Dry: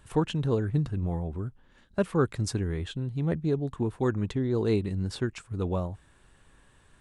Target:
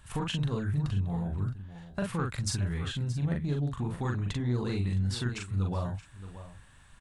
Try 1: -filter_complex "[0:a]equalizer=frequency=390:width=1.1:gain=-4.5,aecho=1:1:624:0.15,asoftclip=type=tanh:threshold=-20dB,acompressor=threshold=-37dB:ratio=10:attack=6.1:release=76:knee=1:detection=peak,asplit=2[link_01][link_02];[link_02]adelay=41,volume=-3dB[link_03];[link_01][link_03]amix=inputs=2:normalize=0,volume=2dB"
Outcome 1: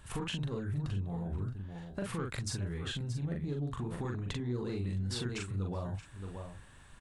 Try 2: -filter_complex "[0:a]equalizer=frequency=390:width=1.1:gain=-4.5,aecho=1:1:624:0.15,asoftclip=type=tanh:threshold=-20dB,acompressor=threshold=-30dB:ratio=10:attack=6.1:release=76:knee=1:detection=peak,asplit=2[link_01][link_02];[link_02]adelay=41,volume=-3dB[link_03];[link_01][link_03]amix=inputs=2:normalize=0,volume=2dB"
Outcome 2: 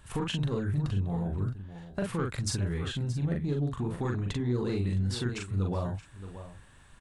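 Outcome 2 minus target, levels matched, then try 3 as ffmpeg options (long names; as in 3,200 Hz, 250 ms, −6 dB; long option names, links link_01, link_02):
500 Hz band +3.0 dB
-filter_complex "[0:a]equalizer=frequency=390:width=1.1:gain=-11,aecho=1:1:624:0.15,asoftclip=type=tanh:threshold=-20dB,acompressor=threshold=-30dB:ratio=10:attack=6.1:release=76:knee=1:detection=peak,asplit=2[link_01][link_02];[link_02]adelay=41,volume=-3dB[link_03];[link_01][link_03]amix=inputs=2:normalize=0,volume=2dB"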